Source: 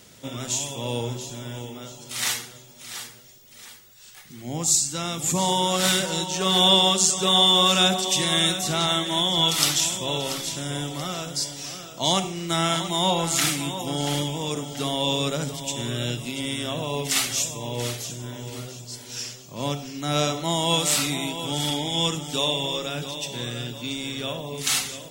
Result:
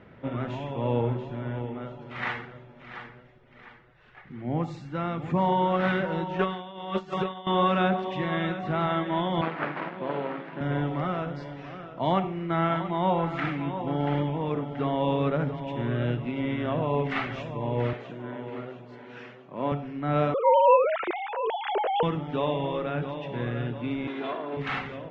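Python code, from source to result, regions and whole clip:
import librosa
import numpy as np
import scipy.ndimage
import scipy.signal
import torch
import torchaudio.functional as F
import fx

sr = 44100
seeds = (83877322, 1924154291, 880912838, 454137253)

y = fx.chain(x, sr, fx.over_compress(threshold_db=-25.0, ratio=-0.5),
    fx.tilt_shelf(db=-3.0, hz=1300.0), at=(6.39, 7.47))
y = fx.chain(y, sr, fx.self_delay(depth_ms=0.79),
    fx.highpass(hz=170.0, slope=24),
    fx.air_absorb(metres=190.0), at=(9.41, 10.61))
y = fx.chain(y, sr, fx.highpass(hz=220.0, slope=12),
    fx.peak_eq(hz=5200.0, db=-5.5, octaves=0.23), at=(17.93, 19.72))
y = fx.chain(y, sr, fx.sine_speech(),
    fx.dynamic_eq(hz=490.0, q=0.7, threshold_db=-34.0, ratio=4.0, max_db=6), at=(20.34, 22.03))
y = fx.chain(y, sr, fx.lower_of_two(delay_ms=2.9),
    fx.highpass(hz=200.0, slope=24),
    fx.peak_eq(hz=5100.0, db=4.0, octaves=1.4), at=(24.07, 24.57))
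y = scipy.signal.sosfilt(scipy.signal.butter(4, 2000.0, 'lowpass', fs=sr, output='sos'), y)
y = fx.rider(y, sr, range_db=3, speed_s=2.0)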